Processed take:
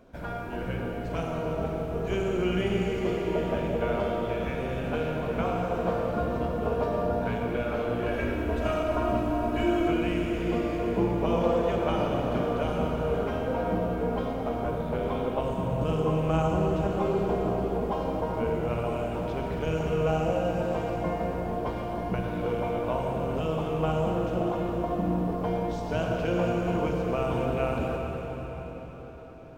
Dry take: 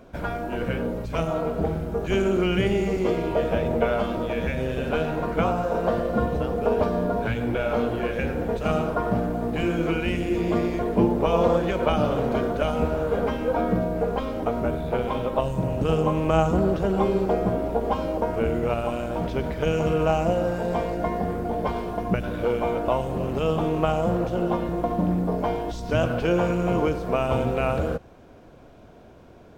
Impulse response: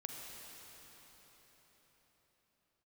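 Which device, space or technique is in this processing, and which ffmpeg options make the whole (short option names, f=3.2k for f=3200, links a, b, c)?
cathedral: -filter_complex "[0:a]asettb=1/sr,asplit=3[a][b][c];[a]atrim=end=8.064[d];[b]atrim=start=8.06:end=9.88,asetpts=PTS-STARTPTS,afade=t=in:d=0.004:c=qsin,afade=t=out:st=1.816:d=0.004:c=qsin,aecho=1:1:3.1:0.96,atrim=end_sample=80262[e];[c]atrim=start=9.876[f];[d][e]acrossfade=d=0.004:c1=hsin:c2=qsin[g];[g][f]acrossfade=d=0.004:c1=qsin:c2=hsin[h];[1:a]atrim=start_sample=2205[i];[h][i]afir=irnorm=-1:irlink=0,volume=-3dB"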